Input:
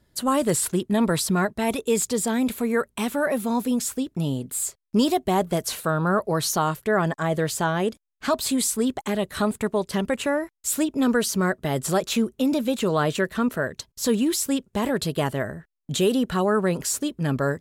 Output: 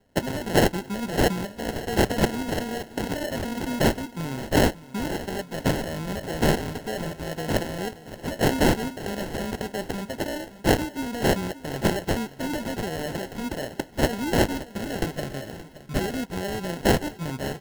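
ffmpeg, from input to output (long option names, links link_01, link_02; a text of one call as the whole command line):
ffmpeg -i in.wav -filter_complex "[0:a]alimiter=limit=-16.5dB:level=0:latency=1:release=135,aexciter=amount=3.5:drive=8.5:freq=3800,flanger=delay=8.8:depth=1.8:regen=-84:speed=0.31:shape=sinusoidal,acrusher=samples=37:mix=1:aa=0.000001,asettb=1/sr,asplit=3[link_01][link_02][link_03];[link_01]atrim=end=14.694[link_04];[link_02]atrim=start=14.69:end=16.25,asetpts=PTS-STARTPTS,afade=type=in:duration=0.004:curve=qsin,afade=type=out:start_time=1.556:duration=0.004:curve=qsin,asuperstop=centerf=910:order=4:qfactor=6.9[link_05];[link_03]atrim=start=16.246[link_06];[link_04][link_05]acrossfade=duration=0.004:curve1=hsin:curve2=qsin[link_07];[link_07][link_06]acrossfade=duration=0.004:curve1=qsin:curve2=hsin,asplit=2[link_08][link_09];[link_09]aecho=0:1:574|1148|1722|2296:0.158|0.0713|0.0321|0.0144[link_10];[link_08][link_10]amix=inputs=2:normalize=0,volume=-1.5dB" out.wav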